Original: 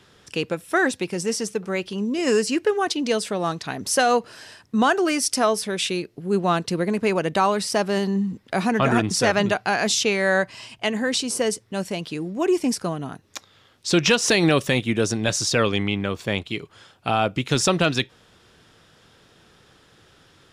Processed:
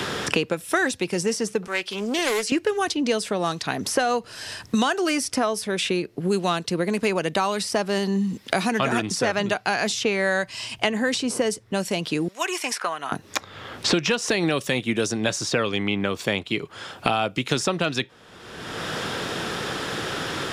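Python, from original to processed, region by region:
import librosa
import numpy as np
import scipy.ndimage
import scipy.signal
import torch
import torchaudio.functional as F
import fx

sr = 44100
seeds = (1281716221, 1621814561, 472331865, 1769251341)

y = fx.chain(x, sr, fx.highpass(hz=1400.0, slope=6),
    fx.doppler_dist(depth_ms=0.26), at=(1.67, 2.52))
y = fx.chain(y, sr, fx.highpass(hz=1300.0, slope=12),
    fx.notch(hz=4700.0, q=24.0), at=(12.28, 13.12))
y = fx.low_shelf(y, sr, hz=200.0, db=-4.0)
y = fx.band_squash(y, sr, depth_pct=100)
y = F.gain(torch.from_numpy(y), -1.5).numpy()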